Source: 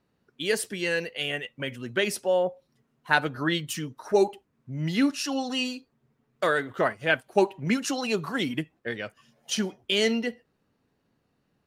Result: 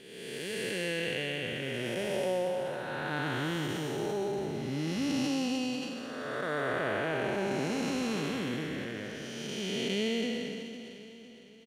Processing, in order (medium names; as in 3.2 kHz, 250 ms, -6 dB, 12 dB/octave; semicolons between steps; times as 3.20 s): spectral blur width 631 ms; feedback delay 506 ms, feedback 47%, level -13 dB; decay stretcher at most 28 dB/s; trim +1.5 dB